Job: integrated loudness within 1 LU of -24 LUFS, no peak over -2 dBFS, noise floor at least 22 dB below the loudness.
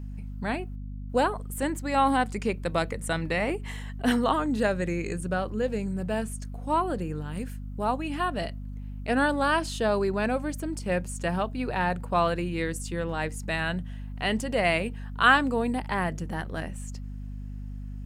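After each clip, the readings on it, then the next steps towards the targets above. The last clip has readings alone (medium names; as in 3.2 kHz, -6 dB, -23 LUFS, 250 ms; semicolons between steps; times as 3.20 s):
hum 50 Hz; highest harmonic 250 Hz; hum level -34 dBFS; loudness -28.0 LUFS; peak level -7.0 dBFS; loudness target -24.0 LUFS
-> hum notches 50/100/150/200/250 Hz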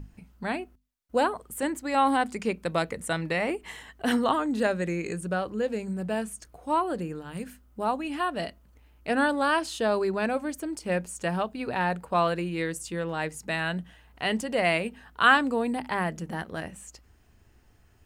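hum not found; loudness -28.0 LUFS; peak level -7.0 dBFS; loudness target -24.0 LUFS
-> trim +4 dB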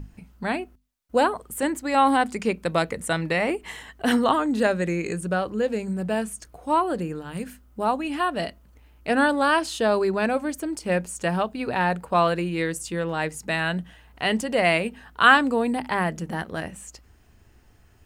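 loudness -24.0 LUFS; peak level -3.0 dBFS; noise floor -55 dBFS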